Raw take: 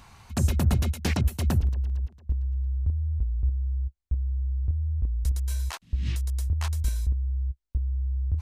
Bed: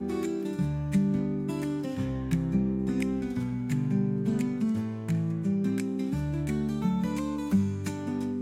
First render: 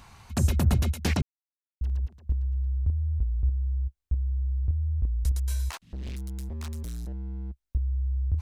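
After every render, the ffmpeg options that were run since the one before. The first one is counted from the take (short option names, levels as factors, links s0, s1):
-filter_complex "[0:a]asettb=1/sr,asplit=3[s0][s1][s2];[s0]atrim=end=5.714[s3];[s1]atrim=start=5.71:end=7.65,asetpts=PTS-STARTPTS,afade=t=in:d=0.004:c=qsin,afade=t=out:st=1.936:d=0.004:c=qsin,asoftclip=type=hard:threshold=0.0224[s4];[s2]atrim=start=7.646[s5];[s3][s4]acrossfade=d=0.004:c1=hsin:c2=qsin[s6];[s6][s5]acrossfade=d=0.004:c1=qsin:c2=hsin,asplit=3[s7][s8][s9];[s7]atrim=end=1.22,asetpts=PTS-STARTPTS,afade=t=out:st=1.216:d=0.004:c=hsin[s10];[s8]atrim=start=1.22:end=1.81,asetpts=PTS-STARTPTS,volume=0[s11];[s9]atrim=start=1.81,asetpts=PTS-STARTPTS,afade=t=in:d=0.004:c=hsin[s12];[s10][s11][s12]concat=n=3:v=0:a=1"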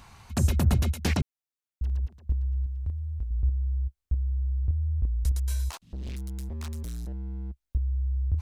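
-filter_complex "[0:a]asettb=1/sr,asplit=3[s0][s1][s2];[s0]atrim=end=2.664[s3];[s1]atrim=start=2.66:end=3.31,asetpts=PTS-STARTPTS,afade=t=in:d=0.004:c=qsin,afade=t=out:st=0.646:d=0.004:c=qsin,tiltshelf=f=780:g=-5.5[s4];[s2]atrim=start=3.306[s5];[s3][s4]acrossfade=d=0.004:c1=hsin:c2=qsin[s6];[s6][s5]acrossfade=d=0.004:c1=qsin:c2=hsin,asettb=1/sr,asplit=3[s7][s8][s9];[s7]atrim=end=5.644[s10];[s8]atrim=start=5.64:end=6.09,asetpts=PTS-STARTPTS,afade=t=in:d=0.004:c=qsin,afade=t=out:st=0.446:d=0.004:c=qsin,equalizer=f=1900:t=o:w=1.1:g=-6.5[s11];[s9]atrim=start=6.086[s12];[s10][s11]acrossfade=d=0.004:c1=hsin:c2=qsin[s13];[s13][s12]acrossfade=d=0.004:c1=qsin:c2=hsin"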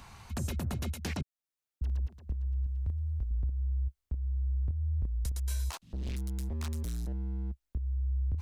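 -filter_complex "[0:a]acrossover=split=120[s0][s1];[s0]acompressor=threshold=0.0355:ratio=6[s2];[s2][s1]amix=inputs=2:normalize=0,alimiter=level_in=1.06:limit=0.0631:level=0:latency=1:release=389,volume=0.944"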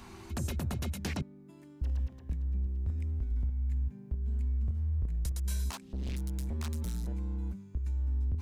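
-filter_complex "[1:a]volume=0.075[s0];[0:a][s0]amix=inputs=2:normalize=0"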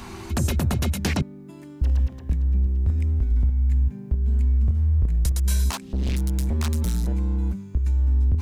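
-af "volume=3.76"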